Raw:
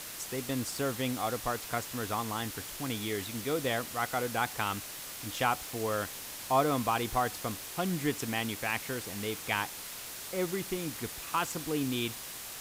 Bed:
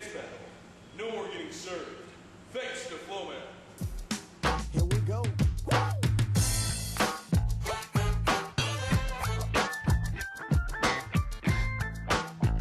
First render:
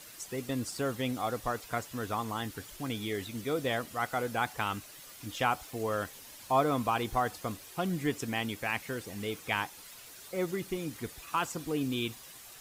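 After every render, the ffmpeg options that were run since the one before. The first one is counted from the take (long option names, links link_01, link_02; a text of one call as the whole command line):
ffmpeg -i in.wav -af "afftdn=noise_reduction=10:noise_floor=-43" out.wav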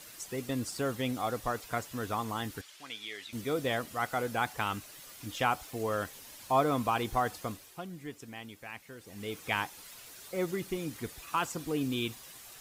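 ffmpeg -i in.wav -filter_complex "[0:a]asettb=1/sr,asplit=3[link_01][link_02][link_03];[link_01]atrim=end=2.614[link_04];[link_02]atrim=start=2.61:end=3.33,asetpts=PTS-STARTPTS,afade=type=in:duration=0.004:curve=qsin,afade=type=out:start_time=0.716:duration=0.004:curve=qsin,bandpass=frequency=3000:width_type=q:width=0.69[link_05];[link_03]atrim=start=3.326[link_06];[link_04][link_05]acrossfade=duration=0.004:curve1=hsin:curve2=qsin[link_07];[link_07][link_06]acrossfade=duration=0.004:curve1=qsin:curve2=hsin,asplit=3[link_08][link_09][link_10];[link_08]atrim=end=7.87,asetpts=PTS-STARTPTS,afade=type=out:start_time=7.39:duration=0.48:silence=0.266073[link_11];[link_09]atrim=start=7.87:end=8.98,asetpts=PTS-STARTPTS,volume=-11.5dB[link_12];[link_10]atrim=start=8.98,asetpts=PTS-STARTPTS,afade=type=in:duration=0.48:silence=0.266073[link_13];[link_11][link_12][link_13]concat=n=3:v=0:a=1" out.wav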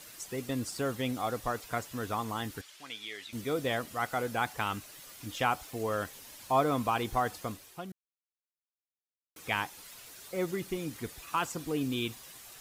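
ffmpeg -i in.wav -filter_complex "[0:a]asplit=3[link_01][link_02][link_03];[link_01]atrim=end=7.92,asetpts=PTS-STARTPTS,afade=type=out:start_time=7.916:duration=0.004:curve=hsin[link_04];[link_02]atrim=start=7.92:end=9.36,asetpts=PTS-STARTPTS,volume=0[link_05];[link_03]atrim=start=9.36,asetpts=PTS-STARTPTS,afade=type=in:duration=0.004:curve=hsin[link_06];[link_04][link_05][link_06]concat=n=3:v=0:a=1" out.wav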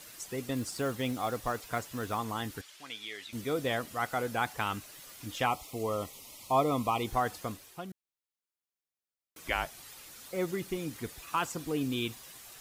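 ffmpeg -i in.wav -filter_complex "[0:a]asettb=1/sr,asplit=3[link_01][link_02][link_03];[link_01]atrim=end=0.564[link_04];[link_02]atrim=start=0.56:end=2.18,asetpts=PTS-STARTPTS,afade=type=in:duration=0.004:curve=qsin,afade=type=out:start_time=1.616:duration=0.004:curve=qsin,acrusher=bits=6:mode=log:mix=0:aa=0.000001[link_05];[link_03]atrim=start=2.176[link_06];[link_04][link_05]acrossfade=duration=0.004:curve1=hsin:curve2=qsin[link_07];[link_07][link_06]acrossfade=duration=0.004:curve1=qsin:curve2=hsin,asettb=1/sr,asplit=3[link_08][link_09][link_10];[link_08]atrim=end=5.464[link_11];[link_09]atrim=start=5.46:end=7.07,asetpts=PTS-STARTPTS,afade=type=in:duration=0.004:curve=qsin,afade=type=out:start_time=1.606:duration=0.004:curve=qsin,asuperstop=centerf=1600:order=8:qfactor=2.5[link_12];[link_10]atrim=start=7.066[link_13];[link_11][link_12]acrossfade=duration=0.004:curve1=hsin:curve2=qsin[link_14];[link_14][link_13]acrossfade=duration=0.004:curve1=qsin:curve2=hsin,asettb=1/sr,asplit=3[link_15][link_16][link_17];[link_15]atrim=end=9.444[link_18];[link_16]atrim=start=9.44:end=10.26,asetpts=PTS-STARTPTS,afade=type=in:duration=0.004:curve=qsin,afade=type=out:start_time=0.816:duration=0.004:curve=qsin,afreqshift=-150[link_19];[link_17]atrim=start=10.256[link_20];[link_18][link_19]acrossfade=duration=0.004:curve1=hsin:curve2=qsin[link_21];[link_21][link_20]acrossfade=duration=0.004:curve1=qsin:curve2=hsin" out.wav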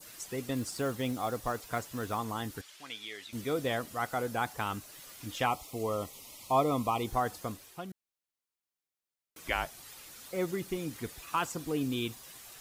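ffmpeg -i in.wav -af "adynamicequalizer=threshold=0.00447:dfrequency=2400:dqfactor=0.89:tfrequency=2400:tqfactor=0.89:attack=5:release=100:ratio=0.375:range=2.5:mode=cutabove:tftype=bell" out.wav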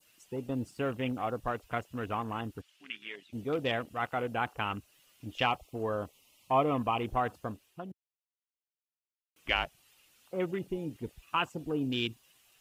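ffmpeg -i in.wav -af "afwtdn=0.00708,equalizer=frequency=2800:width_type=o:width=0.39:gain=10.5" out.wav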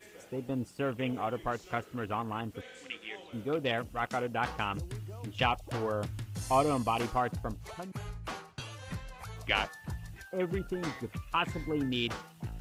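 ffmpeg -i in.wav -i bed.wav -filter_complex "[1:a]volume=-13dB[link_01];[0:a][link_01]amix=inputs=2:normalize=0" out.wav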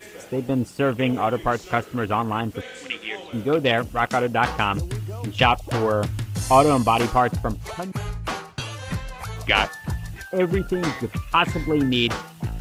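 ffmpeg -i in.wav -af "volume=11.5dB,alimiter=limit=-3dB:level=0:latency=1" out.wav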